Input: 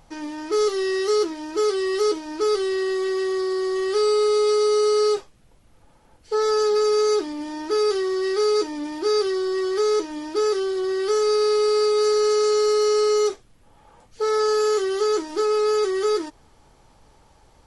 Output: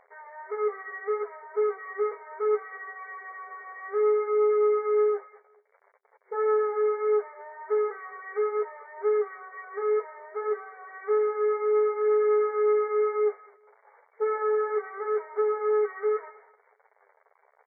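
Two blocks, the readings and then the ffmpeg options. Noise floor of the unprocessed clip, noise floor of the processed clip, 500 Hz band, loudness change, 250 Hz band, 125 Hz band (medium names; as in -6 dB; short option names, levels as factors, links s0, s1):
-55 dBFS, -66 dBFS, -5.5 dB, -5.5 dB, under -15 dB, no reading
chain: -filter_complex "[0:a]asplit=2[s0][s1];[s1]adelay=200,highpass=300,lowpass=3400,asoftclip=type=hard:threshold=0.0891,volume=0.141[s2];[s0][s2]amix=inputs=2:normalize=0,acrusher=bits=7:mix=0:aa=0.000001,afftfilt=real='re*between(b*sr/4096,390,2300)':imag='im*between(b*sr/4096,390,2300)':win_size=4096:overlap=0.75,asplit=2[s3][s4];[s4]aecho=0:1:215|430:0.0891|0.0232[s5];[s3][s5]amix=inputs=2:normalize=0,flanger=delay=8.8:depth=5:regen=-10:speed=0.65:shape=triangular,volume=0.841"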